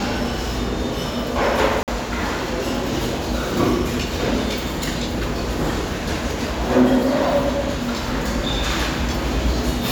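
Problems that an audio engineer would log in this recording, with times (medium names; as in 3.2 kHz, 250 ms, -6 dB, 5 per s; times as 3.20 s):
1.83–1.88 s: dropout 48 ms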